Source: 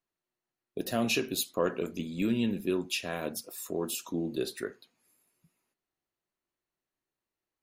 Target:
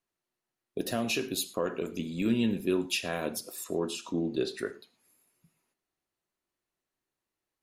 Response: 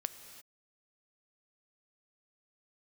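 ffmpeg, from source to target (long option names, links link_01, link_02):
-filter_complex "[0:a]asettb=1/sr,asplit=3[link_01][link_02][link_03];[link_01]atrim=end=0.864[link_04];[link_02]atrim=start=0.86:end=2.26,asetpts=PTS-STARTPTS,afade=type=in:duration=0.004:curve=qsin,afade=type=out:start_time=1.396:duration=0.004:curve=qsin,acompressor=threshold=-31dB:ratio=2[link_05];[link_03]atrim=start=2.256[link_06];[link_04][link_05]acrossfade=duration=0.004:curve1=hsin:curve2=qsin[link_07];[link_07][link_06]acrossfade=duration=0.004:curve1=qsin:curve2=hsin,asettb=1/sr,asplit=3[link_08][link_09][link_10];[link_08]atrim=end=3.644[link_11];[link_09]atrim=start=3.64:end=4.59,asetpts=PTS-STARTPTS,afade=type=in:duration=0.004:curve=qsin,afade=type=out:start_time=0.946:duration=0.004:curve=qsin,lowpass=5800[link_12];[link_10]atrim=start=4.586[link_13];[link_11][link_12]acrossfade=duration=0.004:curve1=hsin:curve2=qsin[link_14];[link_14][link_13]acrossfade=duration=0.004:curve1=qsin:curve2=hsin[link_15];[1:a]atrim=start_sample=2205,atrim=end_sample=3087,asetrate=25137,aresample=44100[link_16];[link_15][link_16]afir=irnorm=-1:irlink=0"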